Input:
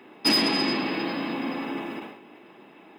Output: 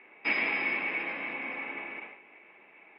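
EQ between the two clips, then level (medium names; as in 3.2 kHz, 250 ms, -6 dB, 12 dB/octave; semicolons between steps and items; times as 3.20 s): four-pole ladder low-pass 2.4 kHz, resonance 80%; resonant low shelf 380 Hz -6 dB, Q 1.5; +2.5 dB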